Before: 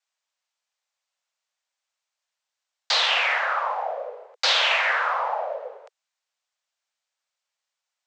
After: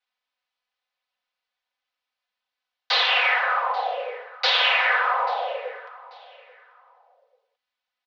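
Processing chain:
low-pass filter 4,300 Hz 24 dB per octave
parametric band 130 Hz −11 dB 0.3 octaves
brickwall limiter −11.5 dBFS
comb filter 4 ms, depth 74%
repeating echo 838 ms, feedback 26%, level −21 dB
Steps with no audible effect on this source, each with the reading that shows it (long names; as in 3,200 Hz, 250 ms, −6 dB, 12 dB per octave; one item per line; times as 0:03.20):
parametric band 130 Hz: nothing at its input below 380 Hz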